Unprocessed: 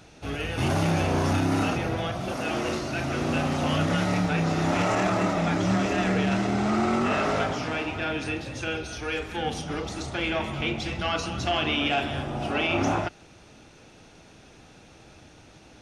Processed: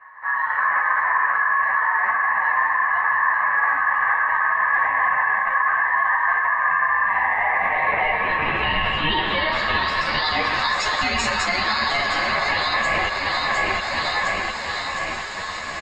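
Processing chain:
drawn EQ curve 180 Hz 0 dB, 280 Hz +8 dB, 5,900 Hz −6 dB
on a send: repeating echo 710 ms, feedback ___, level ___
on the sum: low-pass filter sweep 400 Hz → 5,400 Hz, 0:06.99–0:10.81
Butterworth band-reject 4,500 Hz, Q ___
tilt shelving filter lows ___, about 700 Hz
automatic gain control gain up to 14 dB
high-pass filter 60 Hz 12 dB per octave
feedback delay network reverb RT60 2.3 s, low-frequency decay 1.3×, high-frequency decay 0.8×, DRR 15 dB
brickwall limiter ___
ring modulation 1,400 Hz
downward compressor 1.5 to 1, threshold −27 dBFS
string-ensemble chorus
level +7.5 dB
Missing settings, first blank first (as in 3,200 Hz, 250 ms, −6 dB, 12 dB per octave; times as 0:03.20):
51%, −10 dB, 6.9, −4 dB, −11 dBFS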